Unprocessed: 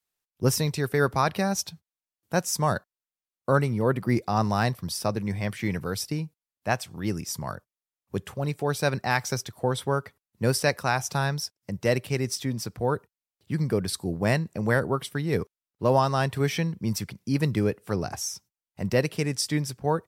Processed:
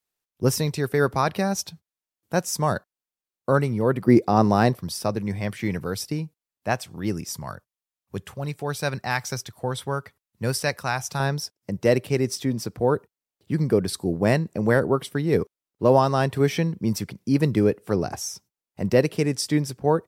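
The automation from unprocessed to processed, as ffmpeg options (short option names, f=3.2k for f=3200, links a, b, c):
-af "asetnsamples=n=441:p=0,asendcmd='4.08 equalizer g 11.5;4.79 equalizer g 3;7.37 equalizer g -3;11.2 equalizer g 6.5',equalizer=f=360:t=o:w=2.1:g=3"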